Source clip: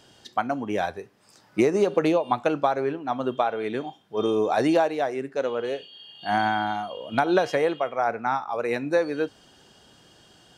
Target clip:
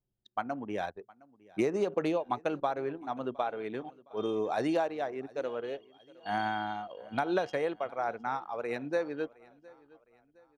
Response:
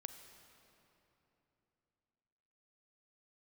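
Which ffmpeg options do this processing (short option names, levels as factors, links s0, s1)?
-af "anlmdn=3.98,aecho=1:1:713|1426|2139:0.0668|0.0287|0.0124,volume=0.376"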